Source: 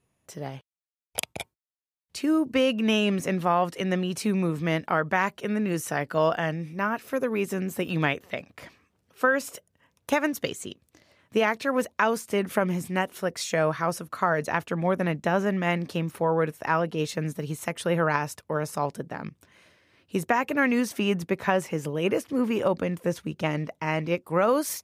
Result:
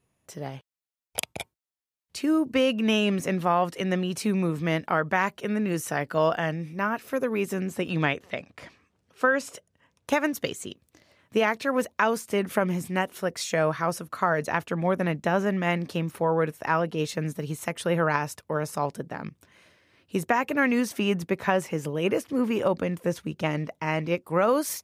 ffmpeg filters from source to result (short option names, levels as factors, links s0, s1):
-filter_complex "[0:a]asettb=1/sr,asplit=3[s0][s1][s2];[s0]atrim=end=7.684[s3];[s1]atrim=start=7.68:end=10.1,asetpts=PTS-STARTPTS,afade=t=in:d=0.004:c=qsin,afade=t=out:st=2.416:d=0.004:c=qsin,lowpass=9200[s4];[s2]atrim=start=10.096[s5];[s3][s4]acrossfade=d=0.004:c1=hsin:c2=qsin[s6];[s6][s5]acrossfade=d=0.004:c1=qsin:c2=hsin"